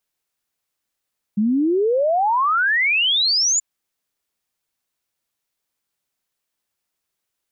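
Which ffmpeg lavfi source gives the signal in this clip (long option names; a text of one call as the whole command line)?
ffmpeg -f lavfi -i "aevalsrc='0.178*clip(min(t,2.23-t)/0.01,0,1)*sin(2*PI*200*2.23/log(7200/200)*(exp(log(7200/200)*t/2.23)-1))':duration=2.23:sample_rate=44100" out.wav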